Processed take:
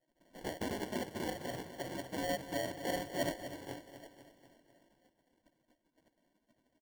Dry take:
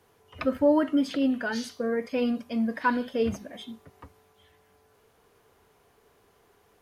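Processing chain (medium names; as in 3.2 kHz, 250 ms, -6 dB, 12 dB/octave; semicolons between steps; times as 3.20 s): spectral gate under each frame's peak -20 dB weak; low-pass that closes with the level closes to 790 Hz, closed at -43 dBFS; in parallel at +1.5 dB: compression, threshold -55 dBFS, peak gain reduction 13 dB; on the sum: rippled Chebyshev low-pass 1 kHz, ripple 9 dB; sample-and-hold 35×; on a send: feedback delay 248 ms, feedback 55%, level -12 dB; on the sum: trim +12 dB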